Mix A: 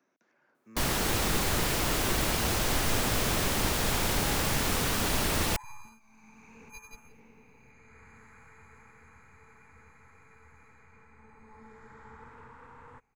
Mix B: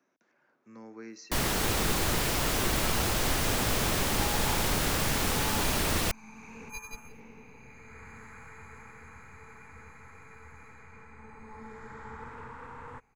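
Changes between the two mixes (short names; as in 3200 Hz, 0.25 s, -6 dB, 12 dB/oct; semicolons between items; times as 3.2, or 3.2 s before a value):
first sound: entry +0.55 s; second sound +6.5 dB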